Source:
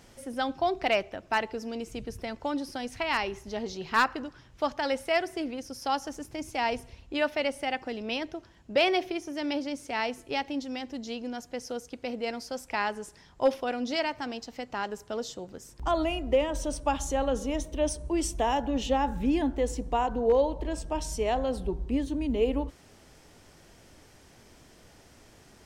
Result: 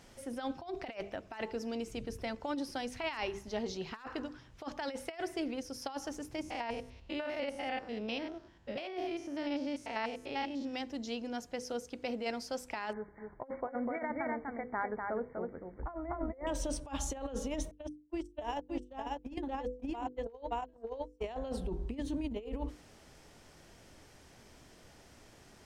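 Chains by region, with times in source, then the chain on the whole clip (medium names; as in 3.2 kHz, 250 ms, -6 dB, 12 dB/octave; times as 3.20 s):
6.41–10.74 s: spectrogram pixelated in time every 100 ms + treble shelf 8 kHz -9.5 dB
12.93–16.47 s: brick-wall FIR low-pass 2.3 kHz + delay 247 ms -4.5 dB
17.71–21.24 s: gate -26 dBFS, range -47 dB + delay 573 ms -5 dB
whole clip: treble shelf 9.3 kHz -3.5 dB; hum notches 50/100/150/200/250/300/350/400/450/500 Hz; compressor with a negative ratio -31 dBFS, ratio -0.5; trim -5 dB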